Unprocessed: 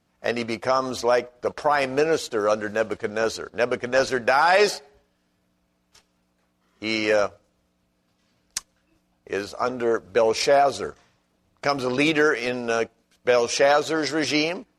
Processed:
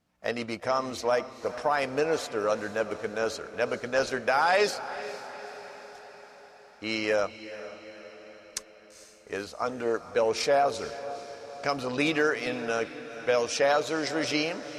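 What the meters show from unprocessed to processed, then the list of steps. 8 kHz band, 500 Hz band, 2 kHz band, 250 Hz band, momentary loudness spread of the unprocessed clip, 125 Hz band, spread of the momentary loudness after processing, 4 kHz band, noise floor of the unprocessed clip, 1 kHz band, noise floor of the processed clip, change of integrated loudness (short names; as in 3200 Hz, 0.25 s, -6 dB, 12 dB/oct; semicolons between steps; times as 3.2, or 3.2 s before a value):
-5.0 dB, -5.5 dB, -5.0 dB, -6.0 dB, 12 LU, -5.5 dB, 17 LU, -5.5 dB, -70 dBFS, -5.0 dB, -53 dBFS, -5.5 dB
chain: notch 370 Hz, Q 12; diffused feedback echo 0.454 s, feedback 59%, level -13.5 dB; gain -5.5 dB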